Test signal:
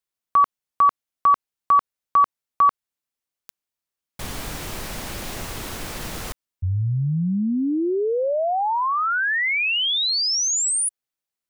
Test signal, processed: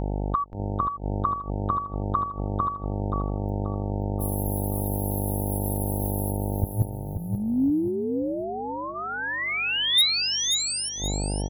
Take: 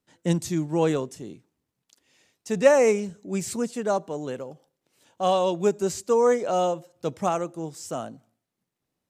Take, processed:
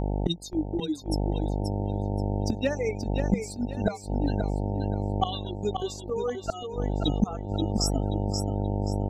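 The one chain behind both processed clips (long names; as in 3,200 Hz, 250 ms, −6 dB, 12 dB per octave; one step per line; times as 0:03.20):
spectral dynamics exaggerated over time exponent 3
noise gate −54 dBFS, range −12 dB
meter weighting curve D
reverb reduction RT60 2 s
in parallel at 0 dB: downward compressor 6 to 1, threshold −23 dBFS
on the sum: hollow resonant body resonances 270/3,700 Hz, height 17 dB, ringing for 30 ms
hum with harmonics 50 Hz, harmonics 18, −36 dBFS −5 dB per octave
floating-point word with a short mantissa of 8 bits
gate with flip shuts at −20 dBFS, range −24 dB
on a send: repeating echo 530 ms, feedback 31%, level −6.5 dB
on the sum: level +8.5 dB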